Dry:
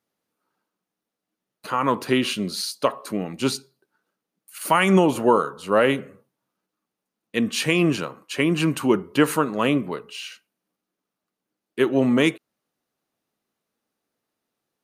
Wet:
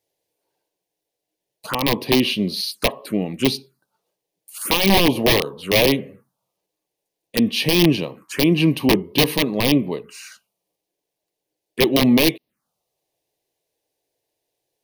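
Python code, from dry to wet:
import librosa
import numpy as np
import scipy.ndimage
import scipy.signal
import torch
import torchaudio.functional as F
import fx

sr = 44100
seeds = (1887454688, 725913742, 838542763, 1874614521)

y = (np.mod(10.0 ** (11.0 / 20.0) * x + 1.0, 2.0) - 1.0) / 10.0 ** (11.0 / 20.0)
y = fx.env_phaser(y, sr, low_hz=220.0, high_hz=1400.0, full_db=-25.0)
y = y * 10.0 ** (5.5 / 20.0)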